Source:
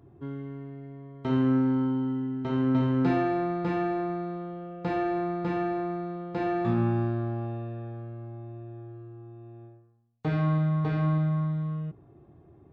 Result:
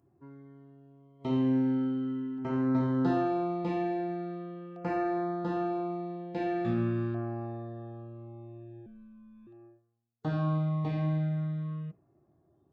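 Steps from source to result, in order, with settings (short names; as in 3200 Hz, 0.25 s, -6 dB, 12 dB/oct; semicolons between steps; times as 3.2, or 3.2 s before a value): LFO notch saw down 0.42 Hz 700–3900 Hz; spectral noise reduction 10 dB; 8.86–9.47 frequency shift -130 Hz; low shelf 94 Hz -9.5 dB; notch 440 Hz, Q 13; gain -1.5 dB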